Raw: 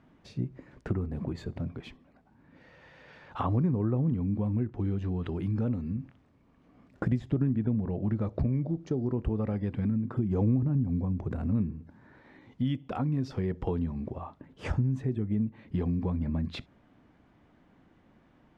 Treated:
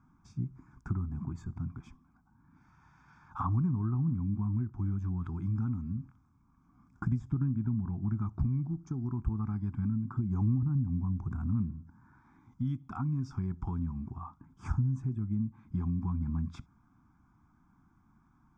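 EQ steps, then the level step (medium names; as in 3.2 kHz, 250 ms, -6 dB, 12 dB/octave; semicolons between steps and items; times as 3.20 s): static phaser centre 1.2 kHz, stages 4; static phaser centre 2.8 kHz, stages 8; 0.0 dB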